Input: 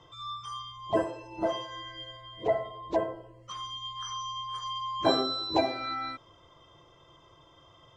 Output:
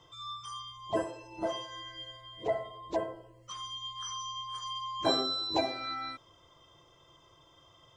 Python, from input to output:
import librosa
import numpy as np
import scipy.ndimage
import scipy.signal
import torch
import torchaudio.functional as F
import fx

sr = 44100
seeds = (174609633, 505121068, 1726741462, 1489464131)

y = fx.high_shelf(x, sr, hz=4800.0, db=11.0)
y = y * 10.0 ** (-4.5 / 20.0)